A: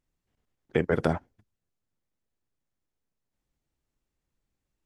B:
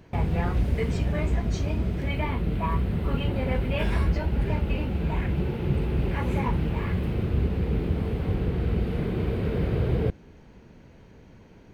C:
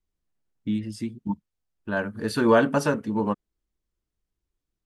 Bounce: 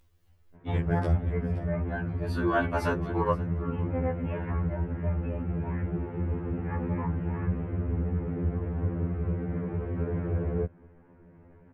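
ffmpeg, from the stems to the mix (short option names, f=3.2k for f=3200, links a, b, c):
-filter_complex "[0:a]lowshelf=f=130:t=q:w=1.5:g=13,volume=-6dB,asplit=3[a][b][c];[b]volume=-13.5dB[d];[1:a]lowpass=f=1.8k:w=0.5412,lowpass=f=1.8k:w=1.3066,adelay=550,volume=-2dB[e];[2:a]highpass=280,equalizer=f=7.6k:w=0.81:g=-9.5,volume=3dB,asplit=2[f][g];[g]volume=-23.5dB[h];[c]apad=whole_len=214105[i];[f][i]sidechaincompress=threshold=-49dB:ratio=5:attack=44:release=1240[j];[d][h]amix=inputs=2:normalize=0,aecho=0:1:524:1[k];[a][e][j][k]amix=inputs=4:normalize=0,acompressor=mode=upward:threshold=-48dB:ratio=2.5,afftfilt=real='re*2*eq(mod(b,4),0)':imag='im*2*eq(mod(b,4),0)':win_size=2048:overlap=0.75"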